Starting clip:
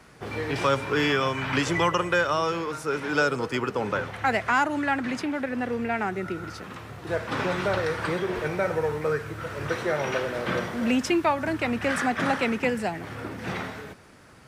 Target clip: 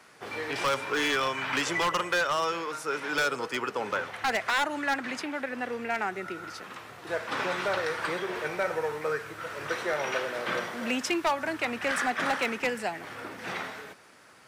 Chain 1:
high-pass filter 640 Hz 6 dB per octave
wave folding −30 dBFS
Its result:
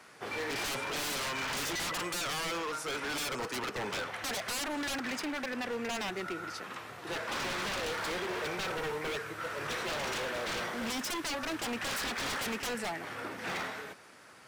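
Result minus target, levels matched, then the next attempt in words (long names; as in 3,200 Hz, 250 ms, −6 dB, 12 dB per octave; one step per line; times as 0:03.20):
wave folding: distortion +18 dB
high-pass filter 640 Hz 6 dB per octave
wave folding −19.5 dBFS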